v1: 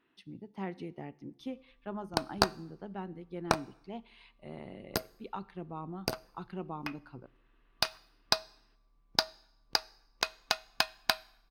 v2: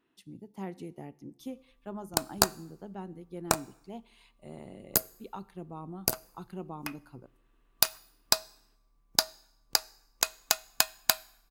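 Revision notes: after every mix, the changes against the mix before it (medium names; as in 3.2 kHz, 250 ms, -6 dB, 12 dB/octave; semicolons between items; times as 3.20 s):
speech: add peaking EQ 1.9 kHz -5 dB 1.7 oct; master: remove Savitzky-Golay filter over 15 samples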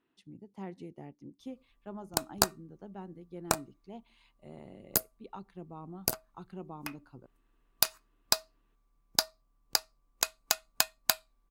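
speech: add distance through air 63 m; reverb: off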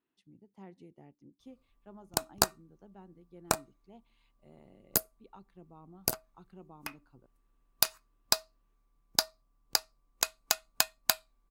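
speech -8.5 dB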